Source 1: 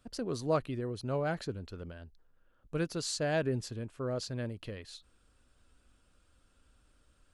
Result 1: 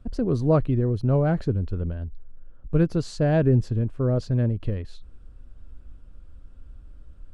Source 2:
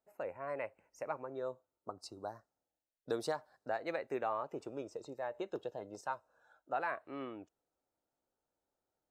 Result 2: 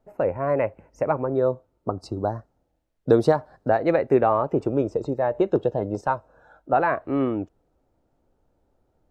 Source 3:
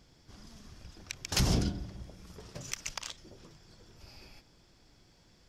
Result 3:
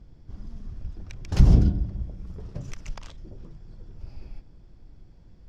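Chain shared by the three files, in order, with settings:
tilt EQ -4 dB/octave; normalise loudness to -24 LUFS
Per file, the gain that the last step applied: +5.0 dB, +14.5 dB, -1.5 dB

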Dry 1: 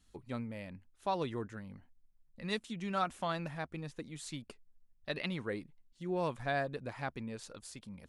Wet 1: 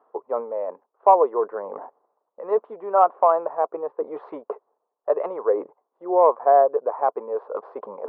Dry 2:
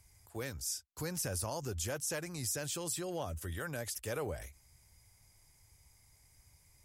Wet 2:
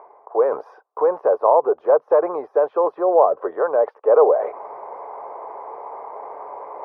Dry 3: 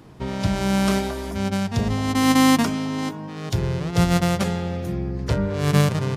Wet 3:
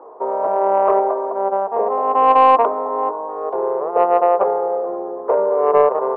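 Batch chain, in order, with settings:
elliptic band-pass 430–1100 Hz, stop band 80 dB; reverse; upward compressor, threshold -43 dBFS; reverse; saturation -16.5 dBFS; peak normalisation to -3 dBFS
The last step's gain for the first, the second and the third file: +21.0 dB, +27.0 dB, +15.0 dB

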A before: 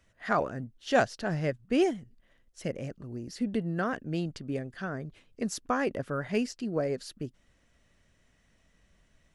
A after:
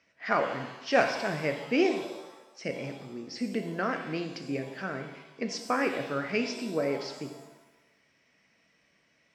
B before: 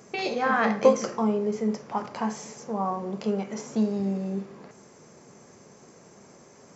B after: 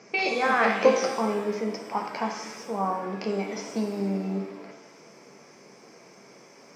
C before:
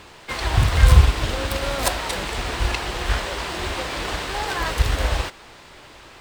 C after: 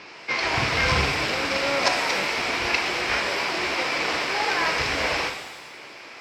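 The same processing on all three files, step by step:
cabinet simulation 210–5500 Hz, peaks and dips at 2.3 kHz +9 dB, 3.5 kHz -5 dB, 5.3 kHz +9 dB; pitch-shifted reverb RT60 1 s, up +7 st, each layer -8 dB, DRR 5 dB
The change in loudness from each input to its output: +1.0 LU, 0.0 LU, -0.5 LU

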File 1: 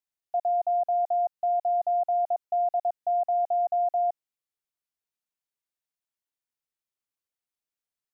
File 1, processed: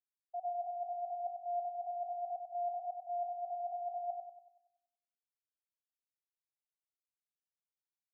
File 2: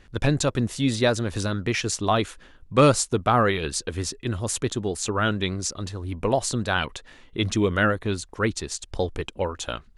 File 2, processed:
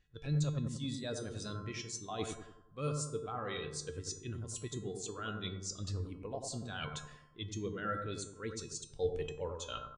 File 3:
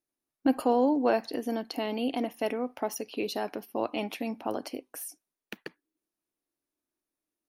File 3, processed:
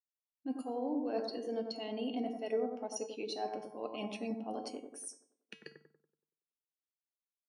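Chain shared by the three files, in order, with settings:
peaking EQ 6.9 kHz +11 dB 2.6 oct; reverse; compression 12:1, threshold -30 dBFS; reverse; feedback comb 150 Hz, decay 0.62 s, harmonics odd, mix 80%; on a send: bucket-brigade echo 94 ms, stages 1024, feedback 60%, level -3.5 dB; on the sum: resampled via 22.05 kHz; spectral contrast expander 1.5:1; trim +5 dB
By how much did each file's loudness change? -13.5 LU, -15.0 LU, -8.5 LU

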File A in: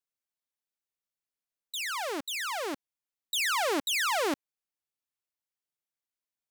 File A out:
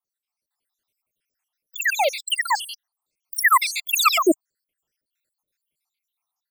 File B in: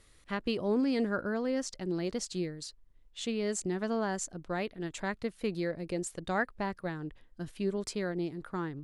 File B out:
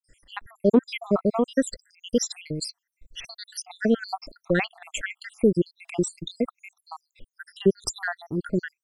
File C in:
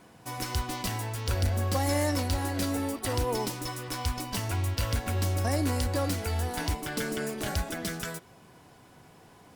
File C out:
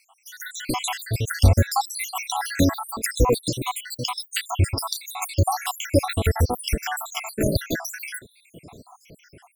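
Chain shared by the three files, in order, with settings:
random holes in the spectrogram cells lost 80%; level rider gain up to 7.5 dB; peak normalisation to -6 dBFS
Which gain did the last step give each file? +9.5 dB, +7.0 dB, +6.0 dB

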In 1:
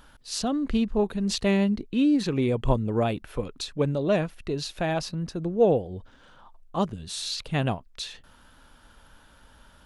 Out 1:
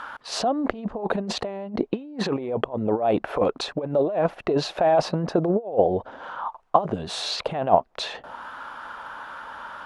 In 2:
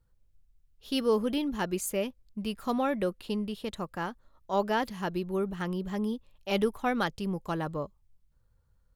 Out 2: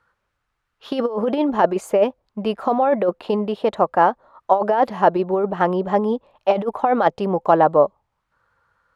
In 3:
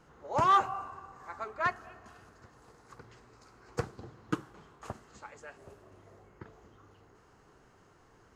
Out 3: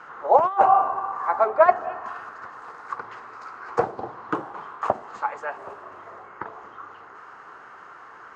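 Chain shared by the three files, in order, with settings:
compressor with a negative ratio -30 dBFS, ratio -0.5; auto-wah 700–1400 Hz, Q 2.1, down, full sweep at -35 dBFS; peak normalisation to -2 dBFS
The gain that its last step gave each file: +19.5 dB, +22.5 dB, +20.0 dB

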